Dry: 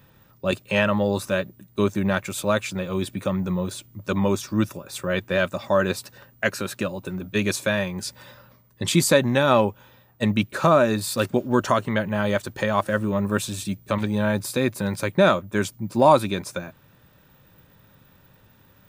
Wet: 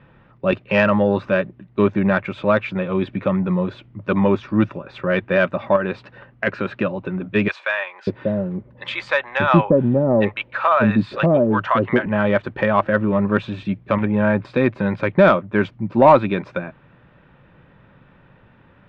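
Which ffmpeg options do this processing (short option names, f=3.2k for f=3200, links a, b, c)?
-filter_complex "[0:a]asettb=1/sr,asplit=3[a][b][c];[a]atrim=end=5.764[d];[b]atrim=start=5.76:end=6.47,asetpts=PTS-STARTPTS,afade=t=in:d=0.004:c=qsin,afade=t=out:st=0.706:d=0.004:c=qsin,acompressor=threshold=-22dB:ratio=10:attack=3.2:release=140:knee=1:detection=peak[e];[c]atrim=start=6.466[f];[d][e]acrossfade=d=0.004:c1=hsin:c2=qsin[g];[g][f]acrossfade=d=0.004:c1=qsin:c2=hsin,asettb=1/sr,asplit=3[h][i][j];[h]atrim=end=7.484[k];[i]atrim=start=7.48:end=12.06,asetpts=PTS-STARTPTS,afade=t=in:d=0.004:c=qsin,afade=t=out:st=4.576:d=0.004:c=qsin,acrossover=split=670[l][m];[l]adelay=590[n];[n][m]amix=inputs=2:normalize=0,atrim=end_sample=201978[o];[j]atrim=start=12.056[p];[k][o]acrossfade=d=0.004:c1=hsin:c2=qsin[q];[q][p]acrossfade=d=0.004:c1=qsin:c2=hsin,asettb=1/sr,asplit=3[r][s][t];[r]atrim=end=13.964[u];[s]atrim=start=13.96:end=14.45,asetpts=PTS-STARTPTS,afade=t=in:d=0.004:c=qsin,afade=t=out:st=0.486:d=0.004:c=qsin,lowpass=f=3k:w=0.5412,lowpass=f=3k:w=1.3066[v];[t]atrim=start=14.446[w];[u][v]acrossfade=d=0.004:c1=hsin:c2=qsin[x];[x][w]acrossfade=d=0.004:c1=qsin:c2=hsin,lowpass=f=2.7k:w=0.5412,lowpass=f=2.7k:w=1.3066,equalizer=f=89:w=7.1:g=-14,acontrast=43"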